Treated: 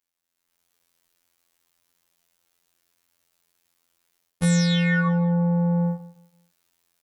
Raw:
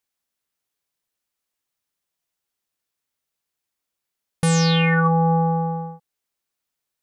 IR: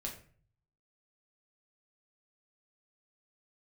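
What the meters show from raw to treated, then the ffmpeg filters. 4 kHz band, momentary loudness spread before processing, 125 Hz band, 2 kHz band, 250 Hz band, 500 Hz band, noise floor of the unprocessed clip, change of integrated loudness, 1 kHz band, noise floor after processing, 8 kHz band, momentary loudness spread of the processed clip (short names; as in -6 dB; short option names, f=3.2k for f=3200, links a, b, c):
-4.0 dB, 11 LU, -1.5 dB, -3.0 dB, +0.5 dB, -5.5 dB, -83 dBFS, -3.0 dB, -12.0 dB, -81 dBFS, -3.5 dB, 7 LU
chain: -af "areverse,acompressor=threshold=-30dB:ratio=12,areverse,aecho=1:1:173|346|519:0.141|0.0381|0.0103,afftfilt=real='hypot(re,im)*cos(PI*b)':imag='0':win_size=2048:overlap=0.75,dynaudnorm=f=150:g=7:m=14.5dB"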